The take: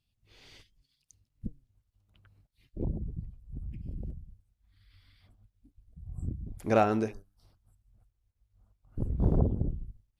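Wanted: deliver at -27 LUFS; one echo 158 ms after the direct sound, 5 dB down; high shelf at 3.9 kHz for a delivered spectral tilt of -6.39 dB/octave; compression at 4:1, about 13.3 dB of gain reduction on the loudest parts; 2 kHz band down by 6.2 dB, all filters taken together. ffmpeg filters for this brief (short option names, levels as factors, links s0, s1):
-af "equalizer=f=2000:t=o:g=-7.5,highshelf=f=3900:g=-7.5,acompressor=threshold=0.0158:ratio=4,aecho=1:1:158:0.562,volume=5.96"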